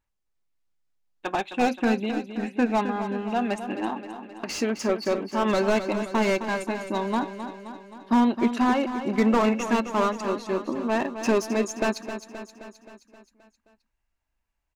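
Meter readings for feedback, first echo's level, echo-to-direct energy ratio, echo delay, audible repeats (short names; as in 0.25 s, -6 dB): 59%, -10.0 dB, -8.0 dB, 0.263 s, 6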